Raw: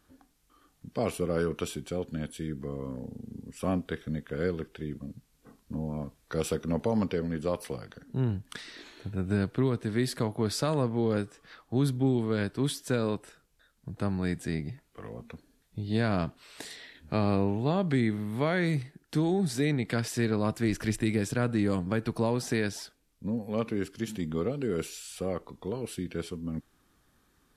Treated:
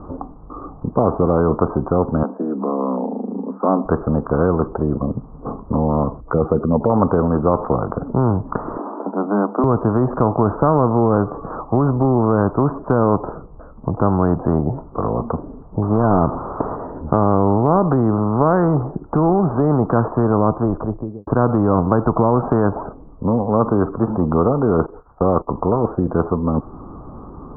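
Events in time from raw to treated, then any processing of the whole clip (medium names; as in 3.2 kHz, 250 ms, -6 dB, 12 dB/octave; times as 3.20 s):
0.88–1.60 s: peaking EQ 1.3 kHz -6 dB
2.23–3.85 s: rippled Chebyshev high-pass 190 Hz, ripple 6 dB
6.20–6.90 s: spectral contrast enhancement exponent 1.7
8.78–9.64 s: rippled Chebyshev high-pass 200 Hz, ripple 6 dB
15.82–16.76 s: one-bit delta coder 32 kbps, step -44.5 dBFS
20.02–21.27 s: studio fade out
24.86–25.48 s: gate -43 dBFS, range -23 dB
whole clip: steep low-pass 1.2 kHz 72 dB/octave; loudness maximiser +19.5 dB; spectrum-flattening compressor 2:1; trim -1 dB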